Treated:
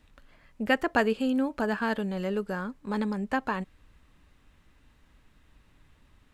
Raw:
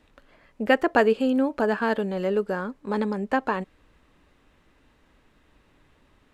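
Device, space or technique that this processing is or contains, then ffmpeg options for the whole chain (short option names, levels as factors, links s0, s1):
smiley-face EQ: -af "lowshelf=f=190:g=6.5,equalizer=f=440:t=o:w=1.7:g=-6,highshelf=f=6200:g=5,volume=0.75"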